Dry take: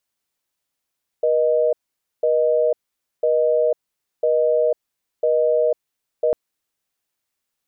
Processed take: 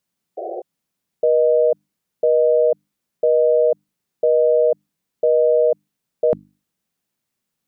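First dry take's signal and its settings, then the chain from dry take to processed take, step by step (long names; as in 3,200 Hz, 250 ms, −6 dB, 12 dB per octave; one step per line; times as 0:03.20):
call progress tone busy tone, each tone −17.5 dBFS 5.10 s
parametric band 180 Hz +15 dB 1.5 octaves
mains-hum notches 50/100/150/200/250/300 Hz
sound drawn into the spectrogram noise, 0:00.37–0:00.62, 340–780 Hz −28 dBFS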